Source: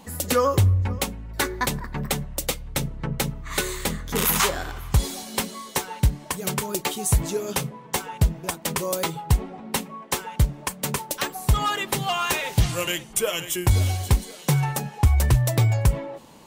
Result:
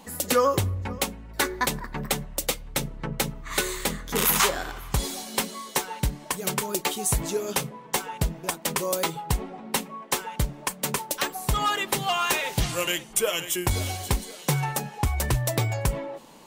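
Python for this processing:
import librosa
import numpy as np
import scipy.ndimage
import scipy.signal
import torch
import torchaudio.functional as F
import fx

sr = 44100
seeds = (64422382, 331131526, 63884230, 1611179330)

y = fx.peak_eq(x, sr, hz=83.0, db=-10.0, octaves=1.6)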